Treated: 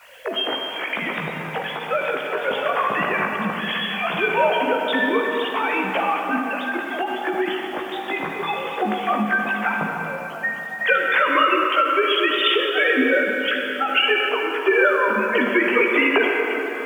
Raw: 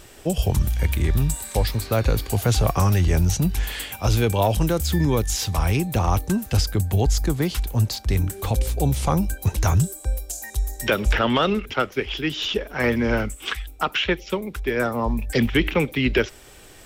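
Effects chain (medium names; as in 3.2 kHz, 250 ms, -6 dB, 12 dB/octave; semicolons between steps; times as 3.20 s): formants replaced by sine waves; high-pass 1.2 kHz 6 dB/octave; in parallel at -1.5 dB: compression, threshold -35 dBFS, peak gain reduction 19 dB; on the sum: word length cut 10-bit, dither triangular; vibrato 6.3 Hz 9.9 cents; chorus voices 6, 0.14 Hz, delay 17 ms, depth 2.4 ms; on a send at -1 dB: reverberation RT60 4.0 s, pre-delay 33 ms; on the sum: loudness maximiser +12 dB; endings held to a fixed fall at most 100 dB/s; trim -5.5 dB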